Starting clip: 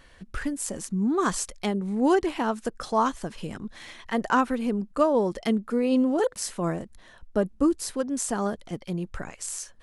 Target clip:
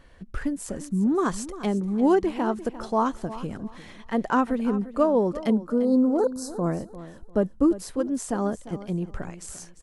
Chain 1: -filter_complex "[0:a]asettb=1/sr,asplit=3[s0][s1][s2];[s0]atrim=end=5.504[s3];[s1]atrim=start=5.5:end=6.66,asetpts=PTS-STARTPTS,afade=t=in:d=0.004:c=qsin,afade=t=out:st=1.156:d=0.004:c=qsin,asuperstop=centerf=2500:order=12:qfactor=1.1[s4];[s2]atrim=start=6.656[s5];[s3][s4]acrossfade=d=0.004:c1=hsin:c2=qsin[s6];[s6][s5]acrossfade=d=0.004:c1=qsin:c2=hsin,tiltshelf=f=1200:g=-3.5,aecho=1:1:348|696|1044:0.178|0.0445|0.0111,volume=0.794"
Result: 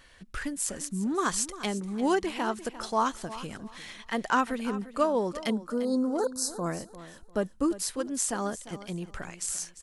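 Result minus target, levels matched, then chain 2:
1 kHz band +3.0 dB
-filter_complex "[0:a]asettb=1/sr,asplit=3[s0][s1][s2];[s0]atrim=end=5.504[s3];[s1]atrim=start=5.5:end=6.66,asetpts=PTS-STARTPTS,afade=t=in:d=0.004:c=qsin,afade=t=out:st=1.156:d=0.004:c=qsin,asuperstop=centerf=2500:order=12:qfactor=1.1[s4];[s2]atrim=start=6.656[s5];[s3][s4]acrossfade=d=0.004:c1=hsin:c2=qsin[s6];[s6][s5]acrossfade=d=0.004:c1=qsin:c2=hsin,tiltshelf=f=1200:g=4.5,aecho=1:1:348|696|1044:0.178|0.0445|0.0111,volume=0.794"

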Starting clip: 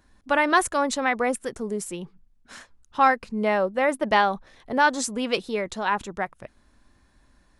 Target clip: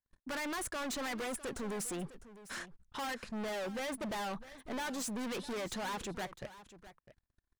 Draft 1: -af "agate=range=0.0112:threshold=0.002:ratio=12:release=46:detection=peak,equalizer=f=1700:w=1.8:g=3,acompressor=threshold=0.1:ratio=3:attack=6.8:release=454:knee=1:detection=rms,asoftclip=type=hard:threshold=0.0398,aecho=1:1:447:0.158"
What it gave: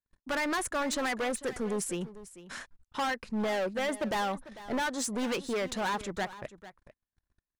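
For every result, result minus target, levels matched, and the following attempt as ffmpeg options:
echo 207 ms early; hard clipper: distortion -4 dB
-af "agate=range=0.0112:threshold=0.002:ratio=12:release=46:detection=peak,equalizer=f=1700:w=1.8:g=3,acompressor=threshold=0.1:ratio=3:attack=6.8:release=454:knee=1:detection=rms,asoftclip=type=hard:threshold=0.0398,aecho=1:1:654:0.158"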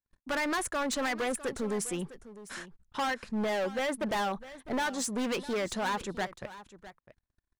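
hard clipper: distortion -4 dB
-af "agate=range=0.0112:threshold=0.002:ratio=12:release=46:detection=peak,equalizer=f=1700:w=1.8:g=3,acompressor=threshold=0.1:ratio=3:attack=6.8:release=454:knee=1:detection=rms,asoftclip=type=hard:threshold=0.0141,aecho=1:1:654:0.158"

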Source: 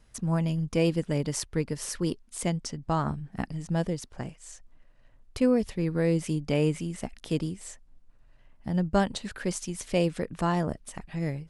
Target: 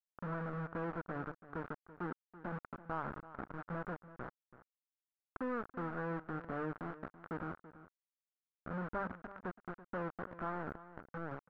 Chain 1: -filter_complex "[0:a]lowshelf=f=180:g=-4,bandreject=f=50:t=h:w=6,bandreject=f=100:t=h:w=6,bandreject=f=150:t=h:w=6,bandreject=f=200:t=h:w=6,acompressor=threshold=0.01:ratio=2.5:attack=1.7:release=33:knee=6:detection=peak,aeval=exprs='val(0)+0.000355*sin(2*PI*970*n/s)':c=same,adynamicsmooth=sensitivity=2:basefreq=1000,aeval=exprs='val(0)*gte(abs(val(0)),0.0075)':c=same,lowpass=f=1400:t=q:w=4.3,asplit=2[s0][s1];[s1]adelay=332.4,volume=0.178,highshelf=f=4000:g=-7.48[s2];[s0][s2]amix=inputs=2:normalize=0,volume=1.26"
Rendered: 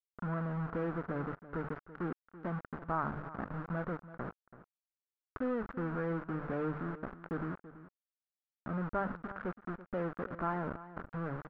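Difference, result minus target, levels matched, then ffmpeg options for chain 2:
compression: peak gain reduction -4 dB
-filter_complex "[0:a]lowshelf=f=180:g=-4,bandreject=f=50:t=h:w=6,bandreject=f=100:t=h:w=6,bandreject=f=150:t=h:w=6,bandreject=f=200:t=h:w=6,acompressor=threshold=0.00447:ratio=2.5:attack=1.7:release=33:knee=6:detection=peak,aeval=exprs='val(0)+0.000355*sin(2*PI*970*n/s)':c=same,adynamicsmooth=sensitivity=2:basefreq=1000,aeval=exprs='val(0)*gte(abs(val(0)),0.0075)':c=same,lowpass=f=1400:t=q:w=4.3,asplit=2[s0][s1];[s1]adelay=332.4,volume=0.178,highshelf=f=4000:g=-7.48[s2];[s0][s2]amix=inputs=2:normalize=0,volume=1.26"

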